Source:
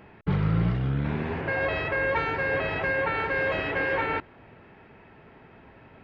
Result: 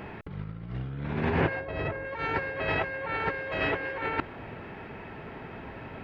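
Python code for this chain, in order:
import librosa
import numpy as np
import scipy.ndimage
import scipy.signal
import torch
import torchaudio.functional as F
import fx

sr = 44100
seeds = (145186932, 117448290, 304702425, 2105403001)

y = fx.tilt_shelf(x, sr, db=5.5, hz=940.0, at=(1.6, 2.05))
y = fx.over_compress(y, sr, threshold_db=-32.0, ratio=-0.5)
y = y * librosa.db_to_amplitude(2.5)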